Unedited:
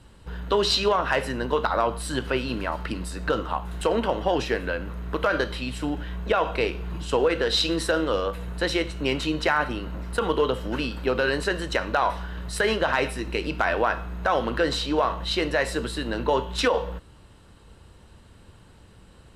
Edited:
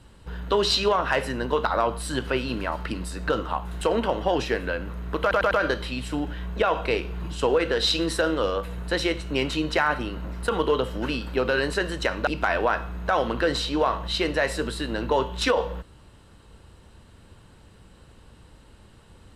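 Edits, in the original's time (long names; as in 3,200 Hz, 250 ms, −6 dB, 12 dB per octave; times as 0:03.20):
0:05.21: stutter 0.10 s, 4 plays
0:11.97–0:13.44: remove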